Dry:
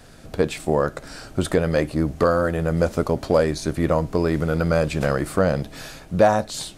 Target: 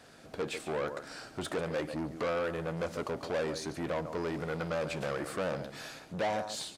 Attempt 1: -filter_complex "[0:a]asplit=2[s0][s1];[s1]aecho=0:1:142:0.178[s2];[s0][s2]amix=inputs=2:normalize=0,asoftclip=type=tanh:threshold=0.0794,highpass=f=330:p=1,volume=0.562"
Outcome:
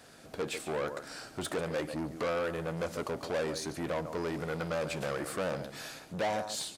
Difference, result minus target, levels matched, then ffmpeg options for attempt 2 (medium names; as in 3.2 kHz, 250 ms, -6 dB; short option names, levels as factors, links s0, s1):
8 kHz band +3.5 dB
-filter_complex "[0:a]asplit=2[s0][s1];[s1]aecho=0:1:142:0.178[s2];[s0][s2]amix=inputs=2:normalize=0,asoftclip=type=tanh:threshold=0.0794,highpass=f=330:p=1,highshelf=f=8400:g=-8.5,volume=0.562"